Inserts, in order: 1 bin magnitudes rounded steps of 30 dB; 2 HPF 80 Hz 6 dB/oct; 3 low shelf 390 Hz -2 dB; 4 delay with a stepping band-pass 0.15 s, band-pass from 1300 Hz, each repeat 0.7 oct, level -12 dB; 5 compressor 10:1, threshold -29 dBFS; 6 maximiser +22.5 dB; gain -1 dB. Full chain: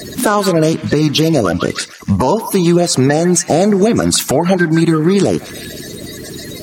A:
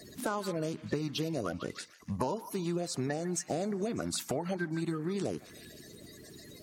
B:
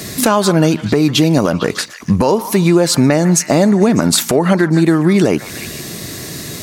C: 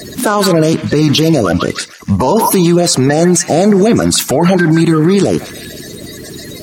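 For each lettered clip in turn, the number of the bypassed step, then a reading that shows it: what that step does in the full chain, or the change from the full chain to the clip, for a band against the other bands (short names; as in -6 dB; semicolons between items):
6, crest factor change +8.0 dB; 1, momentary loudness spread change -1 LU; 5, mean gain reduction 7.5 dB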